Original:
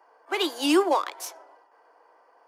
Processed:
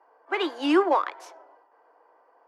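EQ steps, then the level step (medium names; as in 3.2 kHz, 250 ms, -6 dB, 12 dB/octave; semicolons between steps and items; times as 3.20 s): dynamic bell 1.7 kHz, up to +7 dB, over -40 dBFS, Q 0.96; distance through air 55 m; treble shelf 2.8 kHz -12 dB; 0.0 dB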